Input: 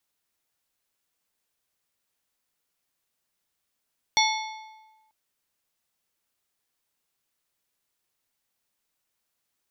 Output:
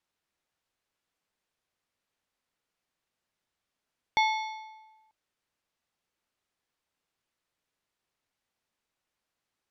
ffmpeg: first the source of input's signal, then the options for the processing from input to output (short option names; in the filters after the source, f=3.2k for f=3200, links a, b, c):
-f lavfi -i "aevalsrc='0.0944*pow(10,-3*t/1.25)*sin(2*PI*873*t)+0.0841*pow(10,-3*t/0.95)*sin(2*PI*2182.5*t)+0.075*pow(10,-3*t/0.825)*sin(2*PI*3492*t)+0.0668*pow(10,-3*t/0.771)*sin(2*PI*4365*t)+0.0596*pow(10,-3*t/0.713)*sin(2*PI*5674.5*t)':d=0.94:s=44100"
-filter_complex "[0:a]acrossover=split=3500[a][b];[b]acompressor=threshold=-40dB:ratio=4:attack=1:release=60[c];[a][c]amix=inputs=2:normalize=0,aemphasis=mode=reproduction:type=50fm"